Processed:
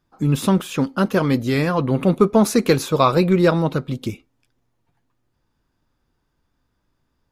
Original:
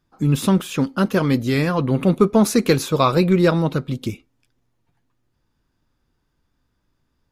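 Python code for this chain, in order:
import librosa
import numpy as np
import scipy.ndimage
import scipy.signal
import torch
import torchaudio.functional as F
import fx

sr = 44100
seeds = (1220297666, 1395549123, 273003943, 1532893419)

y = fx.peak_eq(x, sr, hz=770.0, db=3.0, octaves=1.9)
y = F.gain(torch.from_numpy(y), -1.0).numpy()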